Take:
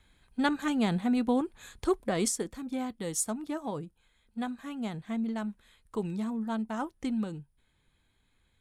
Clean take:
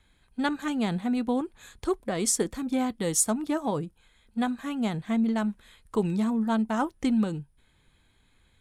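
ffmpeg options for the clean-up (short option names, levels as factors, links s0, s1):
-af "asetnsamples=n=441:p=0,asendcmd='2.28 volume volume 7dB',volume=1"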